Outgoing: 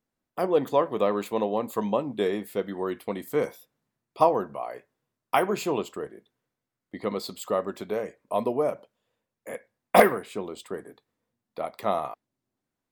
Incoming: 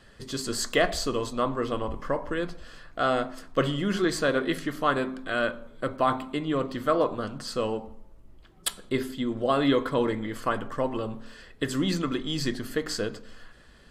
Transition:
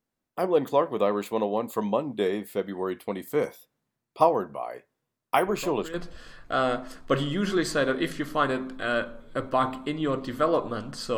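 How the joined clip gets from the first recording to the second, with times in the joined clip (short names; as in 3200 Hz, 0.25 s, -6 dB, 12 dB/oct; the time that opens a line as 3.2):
outgoing
5.47 add incoming from 1.94 s 0.47 s -10.5 dB
5.94 switch to incoming from 2.41 s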